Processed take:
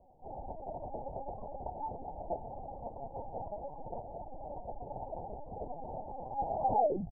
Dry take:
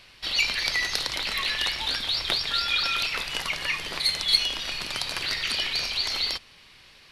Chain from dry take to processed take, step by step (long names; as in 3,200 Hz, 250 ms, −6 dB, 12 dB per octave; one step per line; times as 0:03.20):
turntable brake at the end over 1.81 s
Butterworth low-pass 850 Hz 96 dB per octave
low shelf with overshoot 540 Hz −6 dB, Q 1.5
double-tracking delay 16 ms −6.5 dB
single-tap delay 568 ms −22 dB
linear-prediction vocoder at 8 kHz pitch kept
level +2.5 dB